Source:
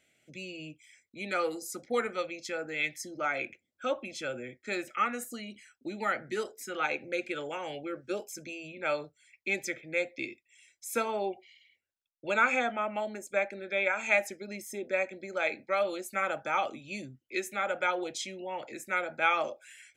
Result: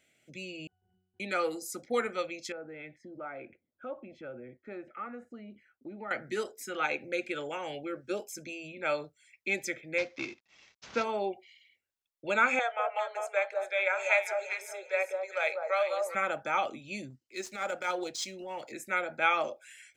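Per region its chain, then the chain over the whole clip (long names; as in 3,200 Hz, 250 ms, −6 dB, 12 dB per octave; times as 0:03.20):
0:00.67–0:01.20: high-shelf EQ 2,700 Hz −4.5 dB + comparator with hysteresis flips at −53.5 dBFS + resonances in every octave F#, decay 0.77 s
0:02.52–0:06.11: low-pass filter 1,200 Hz + downward compressor 1.5 to 1, threshold −49 dBFS
0:09.98–0:11.04: variable-slope delta modulation 32 kbit/s + high-pass filter 49 Hz
0:12.59–0:16.15: Butterworth high-pass 470 Hz 48 dB per octave + high-shelf EQ 11,000 Hz −8.5 dB + delay that swaps between a low-pass and a high-pass 198 ms, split 1,200 Hz, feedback 50%, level −3 dB
0:17.10–0:18.72: running median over 5 samples + flat-topped bell 6,000 Hz +10.5 dB 1.3 octaves + transient designer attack −11 dB, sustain −3 dB
whole clip: no processing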